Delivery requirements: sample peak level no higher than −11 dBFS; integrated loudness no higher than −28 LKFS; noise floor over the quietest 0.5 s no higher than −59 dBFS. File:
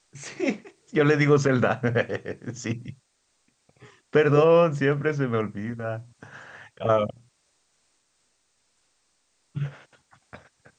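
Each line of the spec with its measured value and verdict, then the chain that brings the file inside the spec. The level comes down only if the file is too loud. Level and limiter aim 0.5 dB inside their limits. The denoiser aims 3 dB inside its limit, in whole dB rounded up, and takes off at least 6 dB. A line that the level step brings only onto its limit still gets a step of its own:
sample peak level −6.5 dBFS: out of spec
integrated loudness −24.0 LKFS: out of spec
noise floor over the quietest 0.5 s −70 dBFS: in spec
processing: level −4.5 dB
brickwall limiter −11.5 dBFS

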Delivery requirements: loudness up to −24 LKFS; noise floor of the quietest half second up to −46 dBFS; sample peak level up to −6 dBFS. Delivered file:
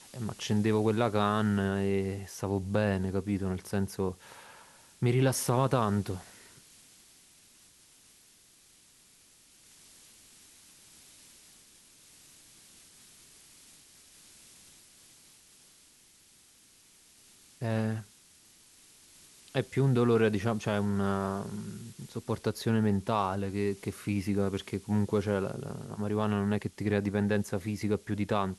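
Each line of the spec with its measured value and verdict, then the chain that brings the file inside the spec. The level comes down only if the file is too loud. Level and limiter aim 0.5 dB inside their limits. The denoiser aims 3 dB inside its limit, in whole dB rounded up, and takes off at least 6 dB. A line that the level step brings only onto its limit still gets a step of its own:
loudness −30.5 LKFS: in spec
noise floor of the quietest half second −61 dBFS: in spec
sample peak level −12.5 dBFS: in spec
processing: no processing needed

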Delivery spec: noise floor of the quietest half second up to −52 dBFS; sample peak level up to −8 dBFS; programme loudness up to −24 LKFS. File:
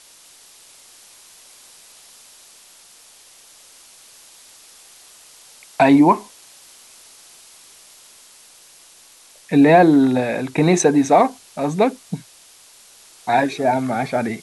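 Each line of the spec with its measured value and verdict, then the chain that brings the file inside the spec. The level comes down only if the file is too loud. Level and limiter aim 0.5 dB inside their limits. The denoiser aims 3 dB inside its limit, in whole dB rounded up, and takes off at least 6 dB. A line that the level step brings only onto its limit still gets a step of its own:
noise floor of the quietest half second −48 dBFS: out of spec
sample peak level −3.5 dBFS: out of spec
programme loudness −16.5 LKFS: out of spec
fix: level −8 dB

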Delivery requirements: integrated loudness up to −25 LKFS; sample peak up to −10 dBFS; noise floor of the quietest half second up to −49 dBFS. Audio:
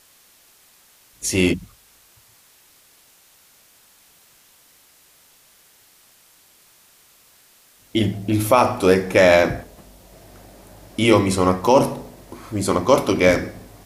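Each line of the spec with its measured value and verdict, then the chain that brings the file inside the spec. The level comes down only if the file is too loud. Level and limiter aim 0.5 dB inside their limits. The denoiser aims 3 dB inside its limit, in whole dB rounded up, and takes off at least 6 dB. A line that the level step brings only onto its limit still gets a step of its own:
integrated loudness −18.0 LKFS: out of spec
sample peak −2.5 dBFS: out of spec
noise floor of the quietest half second −54 dBFS: in spec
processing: level −7.5 dB
brickwall limiter −10.5 dBFS

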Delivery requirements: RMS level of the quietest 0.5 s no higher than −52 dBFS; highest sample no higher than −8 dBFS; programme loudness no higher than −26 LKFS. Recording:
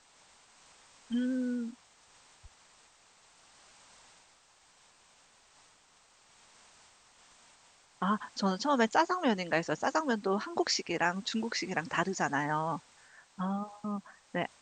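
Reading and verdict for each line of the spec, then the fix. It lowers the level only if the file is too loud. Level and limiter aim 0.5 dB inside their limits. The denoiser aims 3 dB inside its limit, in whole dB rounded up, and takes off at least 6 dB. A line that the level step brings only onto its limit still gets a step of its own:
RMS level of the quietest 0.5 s −64 dBFS: in spec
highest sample −13.5 dBFS: in spec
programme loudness −32.5 LKFS: in spec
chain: no processing needed

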